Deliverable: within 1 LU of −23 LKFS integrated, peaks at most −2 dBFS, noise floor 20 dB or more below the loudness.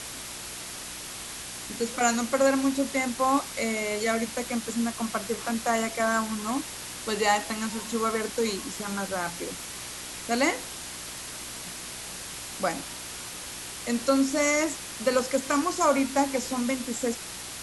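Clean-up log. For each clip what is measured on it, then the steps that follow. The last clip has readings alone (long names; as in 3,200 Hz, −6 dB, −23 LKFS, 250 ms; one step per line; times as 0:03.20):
mains hum 60 Hz; hum harmonics up to 360 Hz; level of the hum −50 dBFS; background noise floor −39 dBFS; target noise floor −49 dBFS; integrated loudness −28.5 LKFS; sample peak −9.0 dBFS; target loudness −23.0 LKFS
→ hum removal 60 Hz, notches 6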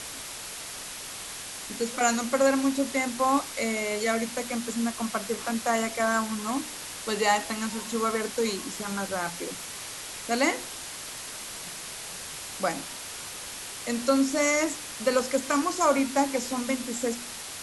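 mains hum none found; background noise floor −39 dBFS; target noise floor −49 dBFS
→ broadband denoise 10 dB, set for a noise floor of −39 dBFS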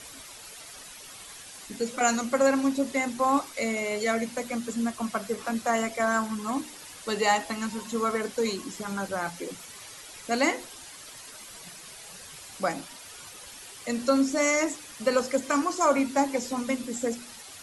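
background noise floor −45 dBFS; target noise floor −48 dBFS
→ broadband denoise 6 dB, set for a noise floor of −45 dBFS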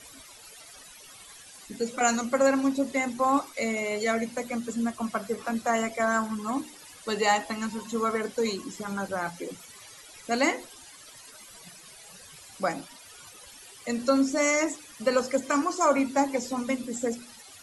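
background noise floor −49 dBFS; integrated loudness −27.5 LKFS; sample peak −9.5 dBFS; target loudness −23.0 LKFS
→ level +4.5 dB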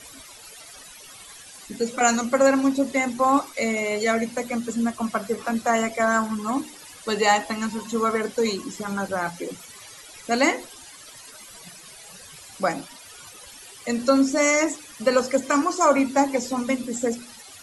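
integrated loudness −23.0 LKFS; sample peak −5.0 dBFS; background noise floor −45 dBFS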